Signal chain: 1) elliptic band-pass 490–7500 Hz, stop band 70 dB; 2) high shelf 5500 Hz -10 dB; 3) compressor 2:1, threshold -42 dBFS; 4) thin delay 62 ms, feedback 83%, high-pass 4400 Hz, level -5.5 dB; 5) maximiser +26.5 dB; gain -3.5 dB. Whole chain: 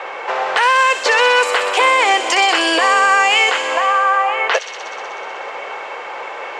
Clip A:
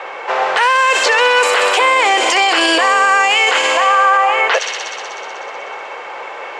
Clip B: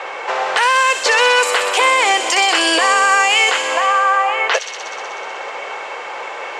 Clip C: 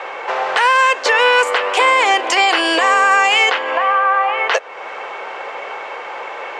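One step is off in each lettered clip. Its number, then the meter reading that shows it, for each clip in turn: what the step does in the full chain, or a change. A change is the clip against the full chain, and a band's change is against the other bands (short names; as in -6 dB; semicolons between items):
3, mean gain reduction 6.5 dB; 2, 8 kHz band +5.5 dB; 4, 8 kHz band -2.5 dB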